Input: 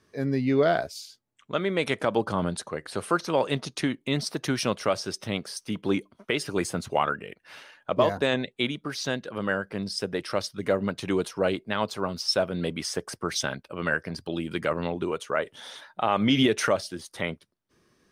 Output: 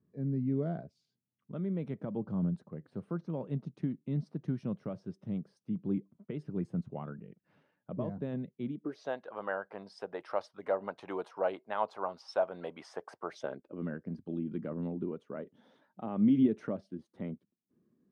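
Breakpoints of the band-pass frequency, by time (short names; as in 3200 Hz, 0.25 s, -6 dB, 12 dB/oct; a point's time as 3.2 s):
band-pass, Q 2.3
8.65 s 170 Hz
9.15 s 810 Hz
13.2 s 810 Hz
13.85 s 220 Hz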